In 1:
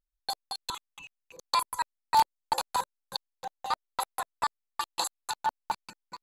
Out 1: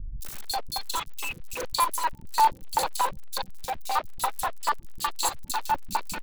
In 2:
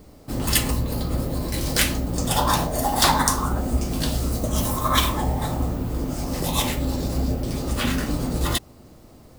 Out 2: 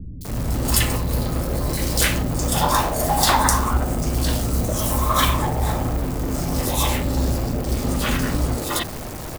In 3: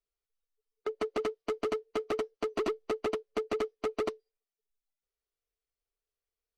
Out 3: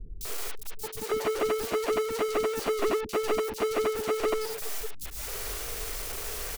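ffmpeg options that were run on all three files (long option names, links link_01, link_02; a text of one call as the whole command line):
ffmpeg -i in.wav -filter_complex "[0:a]aeval=exprs='val(0)+0.5*0.0473*sgn(val(0))':channel_layout=same,acrossover=split=240|3700[link_01][link_02][link_03];[link_03]adelay=210[link_04];[link_02]adelay=250[link_05];[link_01][link_05][link_04]amix=inputs=3:normalize=0,volume=1dB" out.wav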